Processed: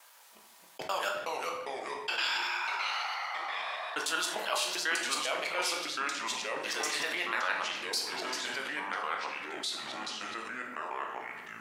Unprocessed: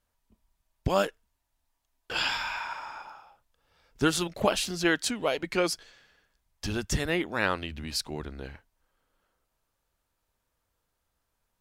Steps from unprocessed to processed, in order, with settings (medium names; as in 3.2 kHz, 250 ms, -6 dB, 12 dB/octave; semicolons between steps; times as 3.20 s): time reversed locally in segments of 99 ms; high-pass 930 Hz 12 dB/octave; simulated room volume 120 m³, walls mixed, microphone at 0.67 m; ever faster or slower copies 201 ms, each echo -3 st, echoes 3, each echo -6 dB; level flattener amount 50%; trim -5 dB